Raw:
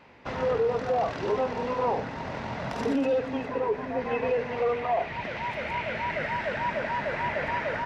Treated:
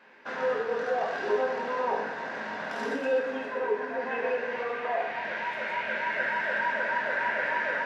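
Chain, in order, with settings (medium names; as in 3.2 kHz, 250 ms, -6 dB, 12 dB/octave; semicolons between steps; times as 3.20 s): high-pass 300 Hz 12 dB/octave; peaking EQ 1.6 kHz +13.5 dB 0.24 oct; reverberation, pre-delay 3 ms, DRR -1 dB; trim -5.5 dB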